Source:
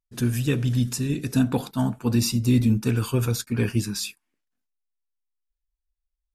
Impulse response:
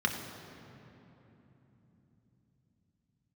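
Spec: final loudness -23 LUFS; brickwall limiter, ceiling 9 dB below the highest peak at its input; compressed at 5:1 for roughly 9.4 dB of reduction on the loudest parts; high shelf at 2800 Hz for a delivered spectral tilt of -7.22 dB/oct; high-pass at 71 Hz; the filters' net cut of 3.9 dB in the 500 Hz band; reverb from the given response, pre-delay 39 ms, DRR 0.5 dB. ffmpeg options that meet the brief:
-filter_complex "[0:a]highpass=71,equalizer=f=500:t=o:g=-5,highshelf=f=2.8k:g=-7,acompressor=threshold=-27dB:ratio=5,alimiter=level_in=2dB:limit=-24dB:level=0:latency=1,volume=-2dB,asplit=2[a][b];[1:a]atrim=start_sample=2205,adelay=39[c];[b][c]afir=irnorm=-1:irlink=0,volume=-9.5dB[d];[a][d]amix=inputs=2:normalize=0,volume=7dB"

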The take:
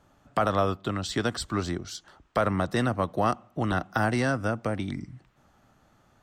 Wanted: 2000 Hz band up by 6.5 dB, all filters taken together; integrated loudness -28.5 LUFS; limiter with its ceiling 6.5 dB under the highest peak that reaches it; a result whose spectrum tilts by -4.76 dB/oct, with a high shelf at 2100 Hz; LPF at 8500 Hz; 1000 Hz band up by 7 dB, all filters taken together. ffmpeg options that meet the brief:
-af "lowpass=8.5k,equalizer=f=1k:t=o:g=8.5,equalizer=f=2k:t=o:g=8.5,highshelf=f=2.1k:g=-6.5,volume=-2.5dB,alimiter=limit=-14.5dB:level=0:latency=1"

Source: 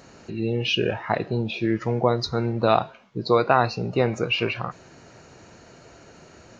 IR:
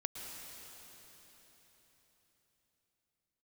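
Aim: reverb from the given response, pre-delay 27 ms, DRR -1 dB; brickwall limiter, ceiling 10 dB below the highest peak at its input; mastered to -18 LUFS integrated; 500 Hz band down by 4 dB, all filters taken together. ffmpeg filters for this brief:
-filter_complex "[0:a]equalizer=f=500:t=o:g=-5,alimiter=limit=-16dB:level=0:latency=1,asplit=2[a][b];[1:a]atrim=start_sample=2205,adelay=27[c];[b][c]afir=irnorm=-1:irlink=0,volume=1dB[d];[a][d]amix=inputs=2:normalize=0,volume=7dB"

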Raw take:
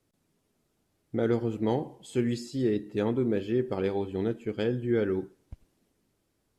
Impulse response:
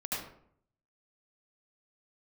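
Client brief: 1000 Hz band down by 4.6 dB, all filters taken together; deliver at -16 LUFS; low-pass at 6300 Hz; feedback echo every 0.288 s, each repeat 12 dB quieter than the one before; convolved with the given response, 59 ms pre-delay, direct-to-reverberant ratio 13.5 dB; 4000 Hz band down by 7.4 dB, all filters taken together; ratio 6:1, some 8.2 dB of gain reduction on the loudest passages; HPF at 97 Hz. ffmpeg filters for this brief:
-filter_complex "[0:a]highpass=97,lowpass=6.3k,equalizer=f=1k:t=o:g=-6,equalizer=f=4k:t=o:g=-9,acompressor=threshold=-31dB:ratio=6,aecho=1:1:288|576|864:0.251|0.0628|0.0157,asplit=2[a][b];[1:a]atrim=start_sample=2205,adelay=59[c];[b][c]afir=irnorm=-1:irlink=0,volume=-18dB[d];[a][d]amix=inputs=2:normalize=0,volume=20.5dB"

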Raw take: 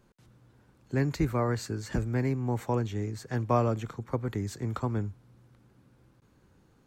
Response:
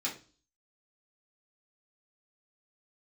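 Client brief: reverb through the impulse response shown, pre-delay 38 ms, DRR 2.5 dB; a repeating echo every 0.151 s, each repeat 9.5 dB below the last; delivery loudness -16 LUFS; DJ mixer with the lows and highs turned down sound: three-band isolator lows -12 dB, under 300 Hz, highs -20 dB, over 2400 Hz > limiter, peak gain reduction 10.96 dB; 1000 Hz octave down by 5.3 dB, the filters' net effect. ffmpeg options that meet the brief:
-filter_complex "[0:a]equalizer=f=1k:t=o:g=-6.5,aecho=1:1:151|302|453|604:0.335|0.111|0.0365|0.012,asplit=2[a][b];[1:a]atrim=start_sample=2205,adelay=38[c];[b][c]afir=irnorm=-1:irlink=0,volume=-6.5dB[d];[a][d]amix=inputs=2:normalize=0,acrossover=split=300 2400:gain=0.251 1 0.1[e][f][g];[e][f][g]amix=inputs=3:normalize=0,volume=23dB,alimiter=limit=-6.5dB:level=0:latency=1"

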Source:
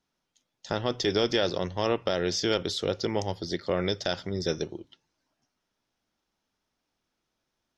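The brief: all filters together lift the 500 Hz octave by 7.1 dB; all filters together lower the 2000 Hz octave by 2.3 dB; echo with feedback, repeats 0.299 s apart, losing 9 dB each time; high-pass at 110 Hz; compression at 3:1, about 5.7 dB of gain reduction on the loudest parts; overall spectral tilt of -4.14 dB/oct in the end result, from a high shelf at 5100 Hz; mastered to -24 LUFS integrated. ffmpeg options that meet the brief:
-af "highpass=110,equalizer=f=500:t=o:g=8.5,equalizer=f=2k:t=o:g=-4.5,highshelf=f=5.1k:g=6,acompressor=threshold=-23dB:ratio=3,aecho=1:1:299|598|897|1196:0.355|0.124|0.0435|0.0152,volume=3.5dB"

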